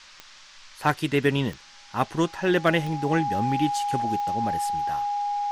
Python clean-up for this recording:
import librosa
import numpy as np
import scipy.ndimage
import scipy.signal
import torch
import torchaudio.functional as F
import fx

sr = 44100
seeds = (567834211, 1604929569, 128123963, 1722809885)

y = fx.fix_declip(x, sr, threshold_db=-8.5)
y = fx.fix_declick_ar(y, sr, threshold=10.0)
y = fx.notch(y, sr, hz=820.0, q=30.0)
y = fx.noise_reduce(y, sr, print_start_s=0.04, print_end_s=0.54, reduce_db=21.0)